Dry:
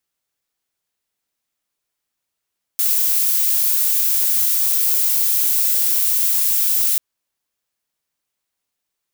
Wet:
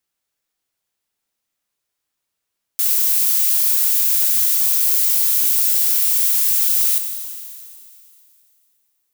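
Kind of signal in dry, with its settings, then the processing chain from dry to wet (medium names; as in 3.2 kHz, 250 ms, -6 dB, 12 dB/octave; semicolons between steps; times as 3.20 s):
noise violet, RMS -17 dBFS 4.19 s
Schroeder reverb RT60 2.6 s, combs from 28 ms, DRR 6.5 dB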